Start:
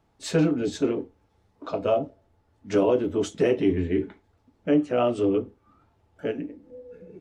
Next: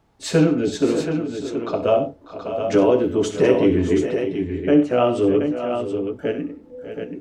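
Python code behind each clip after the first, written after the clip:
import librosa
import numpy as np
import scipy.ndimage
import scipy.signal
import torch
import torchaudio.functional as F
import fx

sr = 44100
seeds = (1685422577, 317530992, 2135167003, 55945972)

y = fx.echo_multitap(x, sr, ms=(64, 92, 595, 623, 726), db=(-12.0, -15.0, -16.0, -12.0, -7.5))
y = F.gain(torch.from_numpy(y), 5.0).numpy()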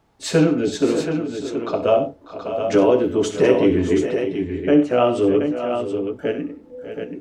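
y = fx.low_shelf(x, sr, hz=220.0, db=-3.5)
y = F.gain(torch.from_numpy(y), 1.5).numpy()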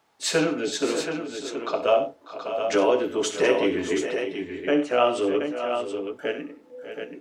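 y = fx.highpass(x, sr, hz=970.0, slope=6)
y = F.gain(torch.from_numpy(y), 2.0).numpy()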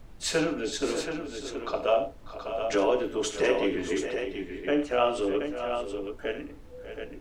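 y = fx.dmg_noise_colour(x, sr, seeds[0], colour='brown', level_db=-43.0)
y = F.gain(torch.from_numpy(y), -4.0).numpy()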